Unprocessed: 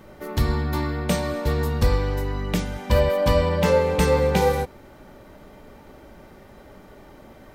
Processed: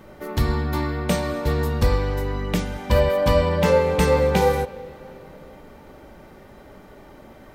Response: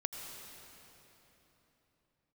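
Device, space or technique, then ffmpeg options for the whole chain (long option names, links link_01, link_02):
filtered reverb send: -filter_complex "[0:a]asplit=2[link_01][link_02];[link_02]highpass=frequency=170:poles=1,lowpass=4100[link_03];[1:a]atrim=start_sample=2205[link_04];[link_03][link_04]afir=irnorm=-1:irlink=0,volume=-14dB[link_05];[link_01][link_05]amix=inputs=2:normalize=0"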